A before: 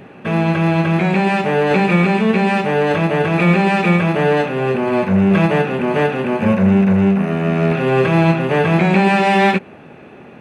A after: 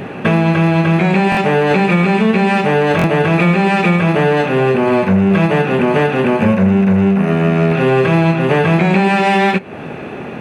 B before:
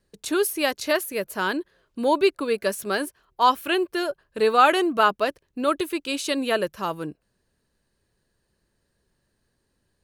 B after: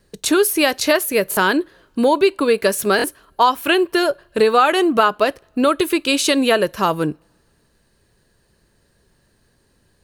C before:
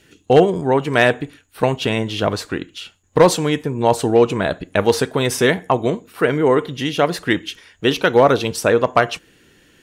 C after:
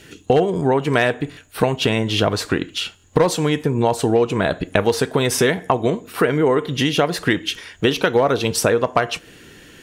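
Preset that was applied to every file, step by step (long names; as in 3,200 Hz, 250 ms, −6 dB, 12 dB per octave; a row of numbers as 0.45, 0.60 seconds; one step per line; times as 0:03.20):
downward compressor 4 to 1, threshold −24 dBFS
coupled-rooms reverb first 0.24 s, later 1.8 s, from −27 dB, DRR 19.5 dB
buffer that repeats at 0:01.30/0:02.97, samples 1,024, times 2
normalise the peak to −1.5 dBFS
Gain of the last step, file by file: +12.5, +12.0, +8.5 decibels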